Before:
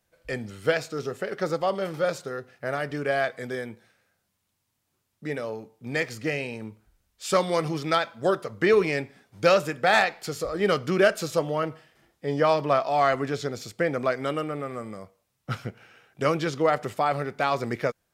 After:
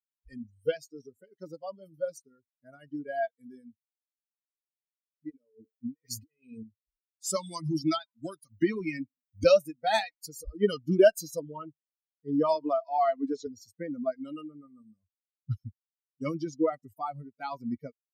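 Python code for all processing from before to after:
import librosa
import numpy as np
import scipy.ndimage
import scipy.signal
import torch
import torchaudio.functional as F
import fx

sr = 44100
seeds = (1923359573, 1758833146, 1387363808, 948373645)

y = fx.chain(x, sr, fx.peak_eq(hz=430.0, db=5.5, octaves=0.49),
    fx.over_compress(threshold_db=-36.0, ratio=-1.0), at=(5.3, 6.63))
y = fx.chain(y, sr, fx.peak_eq(hz=450.0, db=-13.0, octaves=0.31),
    fx.band_squash(depth_pct=70), at=(7.36, 9.44))
y = fx.chain(y, sr, fx.lowpass(hz=9100.0, slope=24),
    fx.peak_eq(hz=96.0, db=-10.0, octaves=2.3),
    fx.band_squash(depth_pct=70), at=(12.55, 13.47))
y = fx.bin_expand(y, sr, power=3.0)
y = fx.peak_eq(y, sr, hz=1700.0, db=-13.5, octaves=2.3)
y = y + 0.35 * np.pad(y, (int(3.2 * sr / 1000.0), 0))[:len(y)]
y = F.gain(torch.from_numpy(y), 7.5).numpy()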